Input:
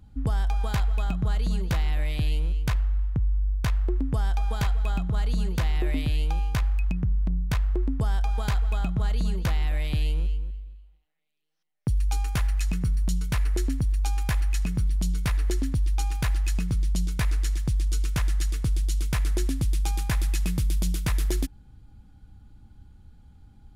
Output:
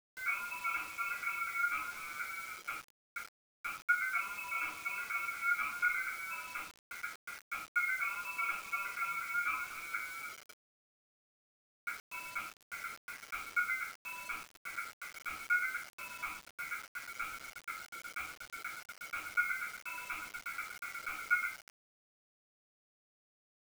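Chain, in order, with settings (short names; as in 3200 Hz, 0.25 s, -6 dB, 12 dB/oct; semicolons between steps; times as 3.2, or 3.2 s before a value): in parallel at -1 dB: limiter -26 dBFS, peak gain reduction 9.5 dB; on the sum: Butterworth band-pass 430 Hz, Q 2.2; tilt +3.5 dB/oct; comb 7.4 ms, depth 67%; on a send: echo 0.236 s -23 dB; on the sum: ring modulator 1800 Hz; chorus voices 2, 0.75 Hz, delay 11 ms, depth 2.5 ms; shoebox room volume 32 m³, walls mixed, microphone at 2.4 m; requantised 8-bit, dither none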